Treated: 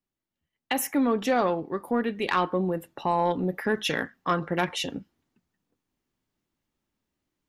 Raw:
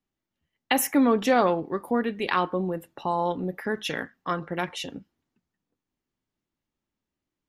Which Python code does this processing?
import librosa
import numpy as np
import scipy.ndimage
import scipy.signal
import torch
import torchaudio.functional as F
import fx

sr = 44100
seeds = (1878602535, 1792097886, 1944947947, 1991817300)

y = fx.rider(x, sr, range_db=4, speed_s=2.0)
y = 10.0 ** (-11.5 / 20.0) * np.tanh(y / 10.0 ** (-11.5 / 20.0))